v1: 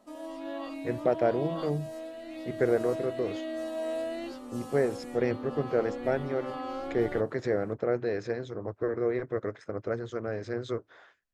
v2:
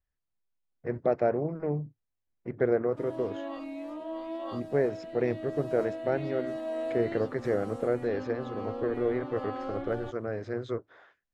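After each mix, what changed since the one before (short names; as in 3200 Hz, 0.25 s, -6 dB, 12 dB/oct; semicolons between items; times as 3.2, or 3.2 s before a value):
background: entry +2.90 s; master: add high shelf 4400 Hz -12 dB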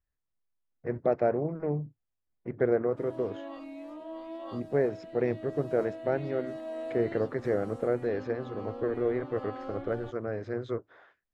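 speech: add high shelf 4600 Hz -7 dB; background -4.0 dB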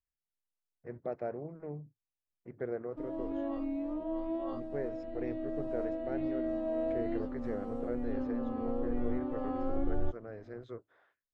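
speech -11.5 dB; background: add tilt -4.5 dB/oct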